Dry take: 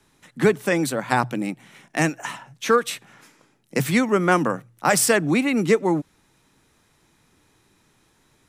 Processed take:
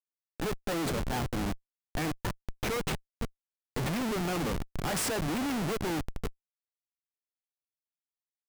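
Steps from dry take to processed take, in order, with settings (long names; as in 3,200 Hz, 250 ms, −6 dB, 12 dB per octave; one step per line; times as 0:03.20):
feedback delay with all-pass diffusion 500 ms, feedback 44%, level −15 dB
comparator with hysteresis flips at −25 dBFS
level −7 dB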